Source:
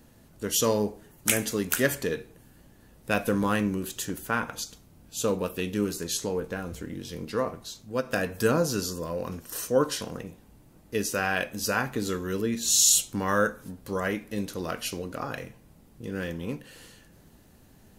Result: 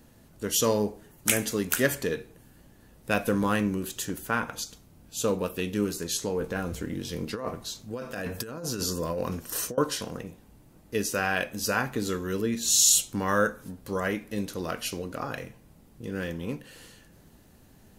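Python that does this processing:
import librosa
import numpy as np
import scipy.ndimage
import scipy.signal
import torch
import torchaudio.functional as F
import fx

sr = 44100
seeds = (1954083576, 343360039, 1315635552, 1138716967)

y = fx.over_compress(x, sr, threshold_db=-32.0, ratio=-1.0, at=(6.4, 9.78))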